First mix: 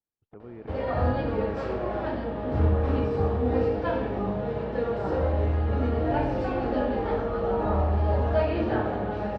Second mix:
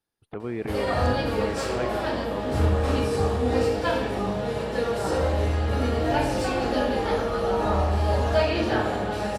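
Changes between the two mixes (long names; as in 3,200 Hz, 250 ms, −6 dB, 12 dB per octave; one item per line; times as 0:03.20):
speech +10.5 dB
master: remove head-to-tape spacing loss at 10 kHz 38 dB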